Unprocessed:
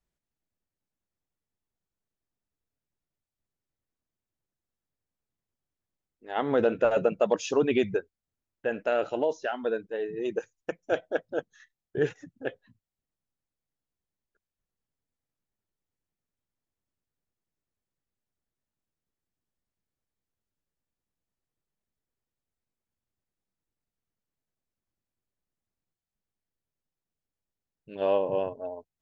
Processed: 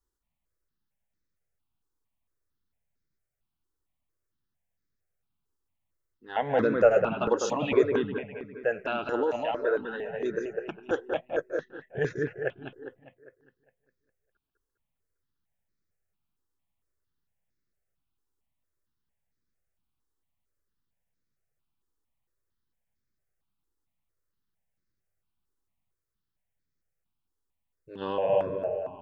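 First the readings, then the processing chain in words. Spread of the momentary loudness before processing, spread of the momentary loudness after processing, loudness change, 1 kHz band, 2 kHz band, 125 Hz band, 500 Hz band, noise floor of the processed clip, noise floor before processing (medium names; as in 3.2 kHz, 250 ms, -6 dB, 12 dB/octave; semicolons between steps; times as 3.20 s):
13 LU, 14 LU, +0.5 dB, +2.0 dB, +2.0 dB, +3.0 dB, +0.5 dB, -83 dBFS, under -85 dBFS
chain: bucket-brigade echo 202 ms, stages 4096, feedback 49%, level -4 dB; stepped phaser 4.4 Hz 640–2900 Hz; trim +3 dB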